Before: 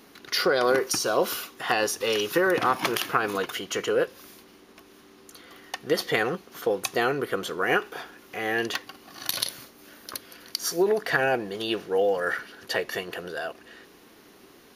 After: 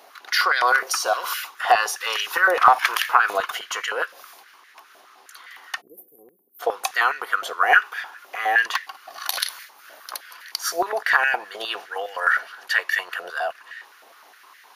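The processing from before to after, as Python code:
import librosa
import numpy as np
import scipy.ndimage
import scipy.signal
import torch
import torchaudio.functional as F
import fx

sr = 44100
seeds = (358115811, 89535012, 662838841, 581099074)

y = fx.cheby2_bandstop(x, sr, low_hz=1400.0, high_hz=4300.0, order=4, stop_db=80, at=(5.8, 6.59), fade=0.02)
y = fx.filter_held_highpass(y, sr, hz=9.7, low_hz=680.0, high_hz=1800.0)
y = F.gain(torch.from_numpy(y), 1.5).numpy()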